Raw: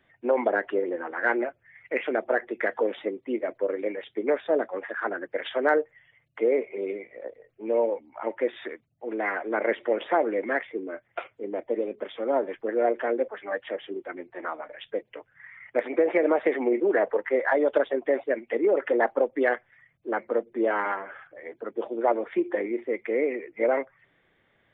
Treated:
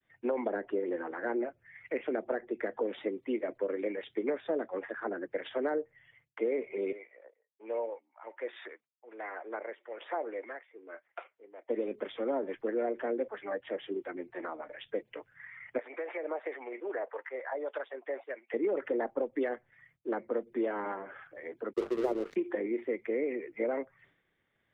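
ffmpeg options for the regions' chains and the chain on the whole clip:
-filter_complex "[0:a]asettb=1/sr,asplit=3[a][b][c];[a]atrim=end=6.924[d];[b]atrim=start=6.92:end=11.69,asetpts=PTS-STARTPTS,afade=t=in:d=0.004:c=qsin,afade=t=out:st=4.766:d=0.004:c=qsin,highpass=680,highshelf=f=2.2k:g=-8,tremolo=f=1.2:d=0.72[e];[c]atrim=start=11.686[f];[d][e]acrossfade=d=0.004:c1=hsin:c2=qsin[g];[g][f]acrossfade=d=0.004:c1=qsin:c2=hsin,asettb=1/sr,asplit=3[h][i][j];[h]atrim=end=15.784[k];[i]atrim=start=15.78:end=18.54,asetpts=PTS-STARTPTS,afade=t=in:d=0.004:c=qsin,afade=t=out:st=2.756:d=0.004:c=qsin,highpass=790,lowpass=3.2k,acrossover=split=840[l][m];[l]aeval=exprs='val(0)*(1-0.5/2+0.5/2*cos(2*PI*1.7*n/s))':c=same[n];[m]aeval=exprs='val(0)*(1-0.5/2-0.5/2*cos(2*PI*1.7*n/s))':c=same[o];[n][o]amix=inputs=2:normalize=0[p];[j]atrim=start=18.536[q];[k][p]acrossfade=d=0.004:c1=hsin:c2=qsin[r];[r][q]acrossfade=d=0.004:c1=qsin:c2=hsin,asettb=1/sr,asplit=3[s][t][u];[s]atrim=end=21.734[v];[t]atrim=start=21.73:end=22.36,asetpts=PTS-STARTPTS,afade=t=in:d=0.004:c=qsin,afade=t=out:st=0.626:d=0.004:c=qsin,equalizer=f=390:w=2.2:g=12.5,bandreject=f=50:t=h:w=6,bandreject=f=100:t=h:w=6,bandreject=f=150:t=h:w=6,bandreject=f=200:t=h:w=6,bandreject=f=250:t=h:w=6,bandreject=f=300:t=h:w=6,bandreject=f=350:t=h:w=6,bandreject=f=400:t=h:w=6,bandreject=f=450:t=h:w=6,aeval=exprs='sgn(val(0))*max(abs(val(0))-0.0178,0)':c=same[w];[u]atrim=start=22.356[x];[v][w]acrossfade=d=0.004:c1=hsin:c2=qsin[y];[y][x]acrossfade=d=0.004:c1=qsin:c2=hsin,equalizer=f=640:t=o:w=1:g=-3.5,agate=range=-33dB:threshold=-59dB:ratio=3:detection=peak,acrossover=split=250|790[z][aa][ab];[z]acompressor=threshold=-41dB:ratio=4[ac];[aa]acompressor=threshold=-31dB:ratio=4[ad];[ab]acompressor=threshold=-45dB:ratio=4[ae];[ac][ad][ae]amix=inputs=3:normalize=0"

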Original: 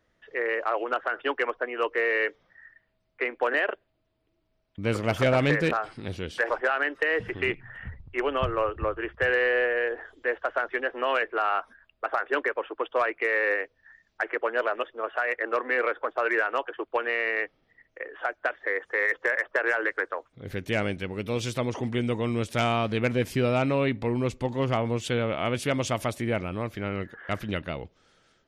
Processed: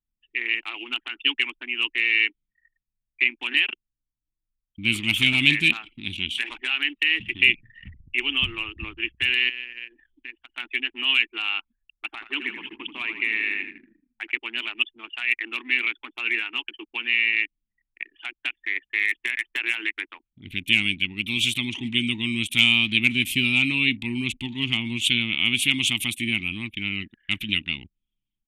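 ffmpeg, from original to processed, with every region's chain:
-filter_complex "[0:a]asettb=1/sr,asplit=3[a][b][c];[a]atrim=end=9.494[d];[b]atrim=start=9.49:end=10.58,asetpts=PTS-STARTPTS,afade=t=in:d=0.004:c=qsin,afade=t=out:st=1.086:d=0.004:c=qsin,equalizer=f=430:w=5.3:g=-4,acompressor=threshold=-40dB:ratio=2:attack=3.2:release=140:knee=1:detection=peak[e];[c]atrim=start=10.576[f];[d][e]acrossfade=d=0.004:c1=hsin:c2=qsin[g];[g][f]acrossfade=d=0.004:c1=qsin:c2=hsin,asettb=1/sr,asplit=3[h][i][j];[h]atrim=end=12.104[k];[i]atrim=start=12.1:end=14.31,asetpts=PTS-STARTPTS,afade=t=in:d=0.004:c=qsin,afade=t=out:st=2.206:d=0.004:c=qsin,highshelf=f=3.4k:g=-11.5,asplit=8[l][m][n][o][p][q][r][s];[m]adelay=81,afreqshift=-38,volume=-9dB[t];[n]adelay=162,afreqshift=-76,volume=-13.6dB[u];[o]adelay=243,afreqshift=-114,volume=-18.2dB[v];[p]adelay=324,afreqshift=-152,volume=-22.7dB[w];[q]adelay=405,afreqshift=-190,volume=-27.3dB[x];[r]adelay=486,afreqshift=-228,volume=-31.9dB[y];[s]adelay=567,afreqshift=-266,volume=-36.5dB[z];[l][t][u][v][w][x][y][z]amix=inputs=8:normalize=0,atrim=end_sample=97461[aa];[j]atrim=start=14.306[ab];[k][aa]acrossfade=d=0.004:c1=hsin:c2=qsin[ac];[ac][ab]acrossfade=d=0.004:c1=qsin:c2=hsin,asettb=1/sr,asplit=3[ad][ae][af];[ad]atrim=end=16.224[ag];[ae]atrim=start=16.22:end=17.33,asetpts=PTS-STARTPTS,afade=t=in:d=0.004:c=qsin,afade=t=out:st=1.106:d=0.004:c=qsin,highshelf=f=6.1k:g=-12,asplit=2[ah][ai];[ai]adelay=13,volume=-12dB[aj];[ah][aj]amix=inputs=2:normalize=0,atrim=end_sample=48951[ak];[af]atrim=start=17.326[al];[ag][ak]acrossfade=d=0.004:c1=hsin:c2=qsin[am];[am][al]acrossfade=d=0.004:c1=qsin:c2=hsin,firequalizer=gain_entry='entry(150,0);entry(230,7);entry(330,2);entry(510,-29);entry(870,-4);entry(1600,-12);entry(2400,5);entry(3500,4);entry(4900,-13);entry(8700,3)':delay=0.05:min_phase=1,anlmdn=0.1,highshelf=f=1.7k:t=q:w=1.5:g=14,volume=-4dB"

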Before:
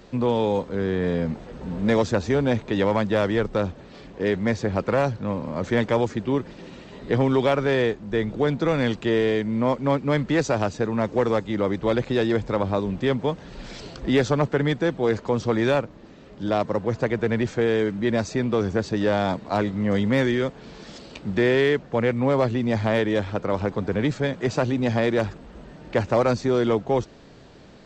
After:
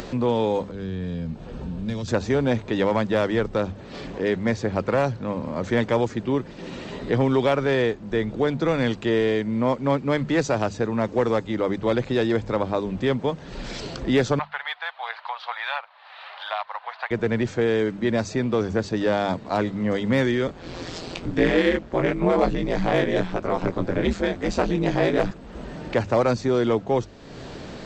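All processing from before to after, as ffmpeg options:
-filter_complex "[0:a]asettb=1/sr,asplit=3[a][b][c];[a]atrim=end=0.714[d];[b]atrim=start=0.71:end=2.08,asetpts=PTS-STARTPTS,afade=t=in:d=0.004:c=qsin,afade=t=out:st=1.366:d=0.004:c=qsin,bass=f=250:g=0,treble=f=4k:g=-8,acrossover=split=190|3000[e][f][g];[f]acompressor=threshold=-49dB:ratio=2:attack=3.2:release=140:knee=2.83:detection=peak[h];[e][h][g]amix=inputs=3:normalize=0,bandreject=f=2k:w=8.4[i];[c]atrim=start=2.076[j];[d][i]acrossfade=d=0.004:c1=hsin:c2=qsin[k];[k][j]acrossfade=d=0.004:c1=qsin:c2=hsin,asettb=1/sr,asplit=3[l][m][n];[l]atrim=end=14.394[o];[m]atrim=start=14.39:end=17.11,asetpts=PTS-STARTPTS,afade=t=in:d=0.004:c=qsin,afade=t=out:st=2.716:d=0.004:c=qsin,asuperpass=centerf=1800:order=12:qfactor=0.51,aphaser=in_gain=1:out_gain=1:delay=4.6:decay=0.28:speed=1.4:type=triangular[p];[n]atrim=start=17.106[q];[o][p]acrossfade=d=0.004:c1=hsin:c2=qsin[r];[r][q]acrossfade=d=0.004:c1=qsin:c2=hsin,asettb=1/sr,asplit=3[s][t][u];[s]atrim=end=20.474[v];[t]atrim=start=20.47:end=25.31,asetpts=PTS-STARTPTS,afade=t=in:d=0.004:c=qsin,afade=t=out:st=4.836:d=0.004:c=qsin,acontrast=85,flanger=delay=17:depth=4.5:speed=1,aeval=exprs='val(0)*sin(2*PI*86*n/s)':c=same[w];[u]atrim=start=25.306[x];[v][w]acrossfade=d=0.004:c1=hsin:c2=qsin[y];[y][x]acrossfade=d=0.004:c1=qsin:c2=hsin,bandreject=f=50:t=h:w=6,bandreject=f=100:t=h:w=6,bandreject=f=150:t=h:w=6,bandreject=f=200:t=h:w=6,acompressor=mode=upward:threshold=-25dB:ratio=2.5"

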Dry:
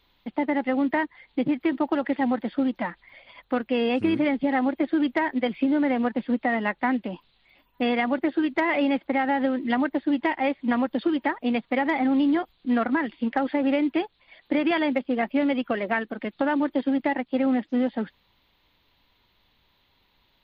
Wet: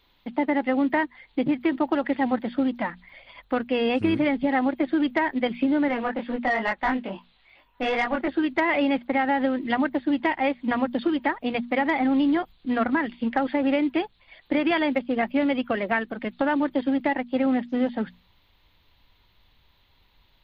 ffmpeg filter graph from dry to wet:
-filter_complex "[0:a]asettb=1/sr,asplit=3[a][b][c];[a]atrim=end=5.884[d];[b]atrim=start=5.88:end=8.28,asetpts=PTS-STARTPTS,afade=t=in:d=0.004:c=qsin,afade=t=out:st=2.396:d=0.004:c=qsin,flanger=delay=20:depth=4:speed=2.3,asplit=2[e][f];[f]highpass=f=720:p=1,volume=13dB,asoftclip=type=tanh:threshold=-14dB[g];[e][g]amix=inputs=2:normalize=0,lowpass=f=2.2k:p=1,volume=-6dB[h];[c]atrim=start=8.276[i];[d][h]acrossfade=d=0.004:c1=hsin:c2=qsin[j];[j][i]acrossfade=d=0.004:c1=qsin:c2=hsin,asubboost=boost=2:cutoff=150,bandreject=f=60:t=h:w=6,bandreject=f=120:t=h:w=6,bandreject=f=180:t=h:w=6,bandreject=f=240:t=h:w=6,volume=1.5dB"

